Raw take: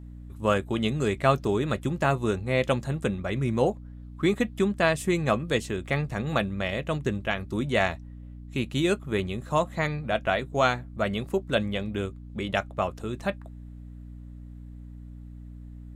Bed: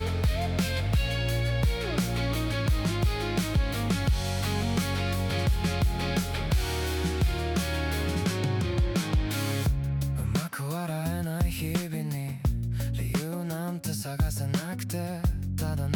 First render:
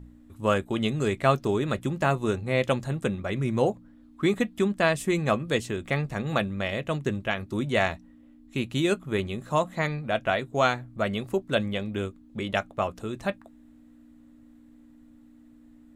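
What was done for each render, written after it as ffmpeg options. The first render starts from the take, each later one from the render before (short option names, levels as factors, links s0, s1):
-af "bandreject=f=60:t=h:w=4,bandreject=f=120:t=h:w=4,bandreject=f=180:t=h:w=4"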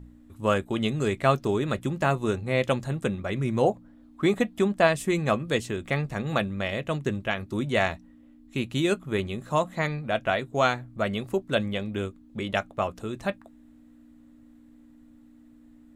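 -filter_complex "[0:a]asettb=1/sr,asplit=3[s0][s1][s2];[s0]atrim=end=3.644[s3];[s1]atrim=start=3.64:end=4.87,asetpts=PTS-STARTPTS,afade=t=in:d=0.004:c=qsin,afade=t=out:st=1.226:d=0.004:c=qsin,equalizer=f=690:w=1.5:g=5.5[s4];[s2]atrim=start=4.866[s5];[s3][s4]acrossfade=d=0.004:c1=hsin:c2=qsin[s6];[s6][s5]acrossfade=d=0.004:c1=qsin:c2=hsin"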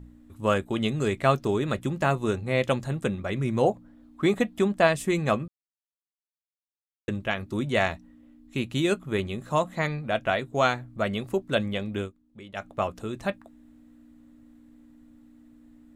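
-filter_complex "[0:a]asplit=5[s0][s1][s2][s3][s4];[s0]atrim=end=5.48,asetpts=PTS-STARTPTS,afade=t=out:st=5.476:d=0.004:c=hsin[s5];[s1]atrim=start=5.48:end=7.08,asetpts=PTS-STARTPTS,volume=0[s6];[s2]atrim=start=7.08:end=12.13,asetpts=PTS-STARTPTS,afade=t=in:d=0.004:c=hsin,afade=t=out:st=4.92:d=0.13:silence=0.223872[s7];[s3]atrim=start=12.13:end=12.55,asetpts=PTS-STARTPTS,volume=0.224[s8];[s4]atrim=start=12.55,asetpts=PTS-STARTPTS,afade=t=in:d=0.13:silence=0.223872[s9];[s5][s6][s7][s8][s9]concat=n=5:v=0:a=1"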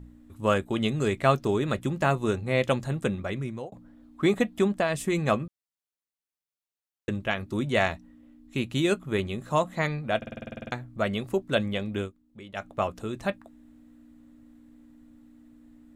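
-filter_complex "[0:a]asettb=1/sr,asplit=3[s0][s1][s2];[s0]atrim=end=4.704[s3];[s1]atrim=start=4.7:end=5.19,asetpts=PTS-STARTPTS,afade=t=in:d=0.004:c=qsin,afade=t=out:st=0.486:d=0.004:c=qsin,acompressor=threshold=0.1:ratio=6:attack=3.2:release=140:knee=1:detection=peak[s4];[s2]atrim=start=5.186[s5];[s3][s4]acrossfade=d=0.004:c1=hsin:c2=qsin[s6];[s6][s5]acrossfade=d=0.004:c1=qsin:c2=hsin,asplit=13[s7][s8][s9][s10][s11][s12][s13][s14][s15][s16][s17][s18][s19];[s7]atrim=end=3.72,asetpts=PTS-STARTPTS,afade=t=out:st=3.21:d=0.51[s20];[s8]atrim=start=3.72:end=10.222,asetpts=PTS-STARTPTS,afade=t=in:d=0.004:c=hsin[s21];[s9]atrim=start=10.168:end=10.222[s22];[s10]atrim=start=10.168:end=10.222[s23];[s11]atrim=start=10.168:end=10.222[s24];[s12]atrim=start=10.168:end=10.222[s25];[s13]atrim=start=10.168:end=10.222[s26];[s14]atrim=start=10.168:end=10.222[s27];[s15]atrim=start=10.168:end=10.222[s28];[s16]atrim=start=10.168:end=10.222[s29];[s17]atrim=start=10.168:end=10.222[s30];[s18]atrim=start=10.168:end=10.222[s31];[s19]atrim=start=10.718[s32];[s20][s21]concat=n=2:v=0:a=1[s33];[s33][s22]acrossfade=d=0.004:c1=hsin:c2=hsin[s34];[s34][s23]acrossfade=d=0.004:c1=hsin:c2=hsin[s35];[s35][s24]acrossfade=d=0.004:c1=hsin:c2=hsin[s36];[s36][s25]acrossfade=d=0.004:c1=hsin:c2=hsin[s37];[s37][s26]acrossfade=d=0.004:c1=hsin:c2=hsin[s38];[s38][s27]acrossfade=d=0.004:c1=hsin:c2=hsin[s39];[s39][s28]acrossfade=d=0.004:c1=hsin:c2=hsin[s40];[s40][s29]acrossfade=d=0.004:c1=hsin:c2=hsin[s41];[s41][s30]acrossfade=d=0.004:c1=hsin:c2=hsin[s42];[s42][s31]acrossfade=d=0.004:c1=hsin:c2=hsin[s43];[s43][s32]acrossfade=d=0.004:c1=hsin:c2=hsin"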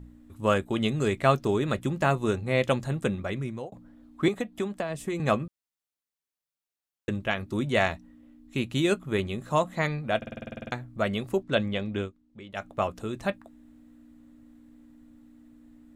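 -filter_complex "[0:a]asettb=1/sr,asplit=3[s0][s1][s2];[s0]atrim=end=4.284[s3];[s1]atrim=start=4.28:end=5.2,asetpts=PTS-STARTPTS,afade=t=in:d=0.004:c=qsin,afade=t=out:st=0.916:d=0.004:c=qsin,acrossover=split=300|960[s4][s5][s6];[s4]acompressor=threshold=0.0158:ratio=4[s7];[s5]acompressor=threshold=0.0282:ratio=4[s8];[s6]acompressor=threshold=0.01:ratio=4[s9];[s7][s8][s9]amix=inputs=3:normalize=0[s10];[s2]atrim=start=5.196[s11];[s3][s10]acrossfade=d=0.004:c1=hsin:c2=qsin[s12];[s12][s11]acrossfade=d=0.004:c1=qsin:c2=hsin,asettb=1/sr,asplit=3[s13][s14][s15];[s13]atrim=end=11.434[s16];[s14]atrim=start=11.43:end=12.51,asetpts=PTS-STARTPTS,afade=t=in:d=0.004:c=qsin,afade=t=out:st=1.076:d=0.004:c=qsin,lowpass=6300[s17];[s15]atrim=start=12.506[s18];[s16][s17]acrossfade=d=0.004:c1=hsin:c2=qsin[s19];[s19][s18]acrossfade=d=0.004:c1=qsin:c2=hsin"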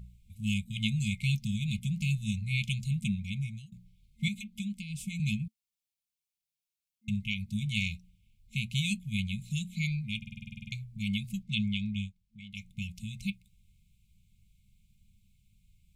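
-af "afftfilt=real='re*(1-between(b*sr/4096,220,2100))':imag='im*(1-between(b*sr/4096,220,2100))':win_size=4096:overlap=0.75"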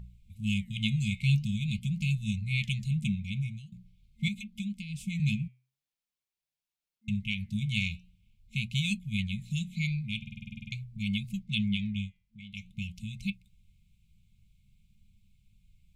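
-filter_complex "[0:a]asplit=2[s0][s1];[s1]adynamicsmooth=sensitivity=4.5:basefreq=6500,volume=0.944[s2];[s0][s2]amix=inputs=2:normalize=0,flanger=delay=1.1:depth=6.8:regen=87:speed=0.45:shape=sinusoidal"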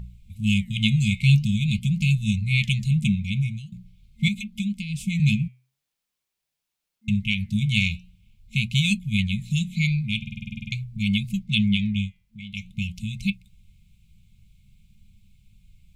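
-af "volume=2.66"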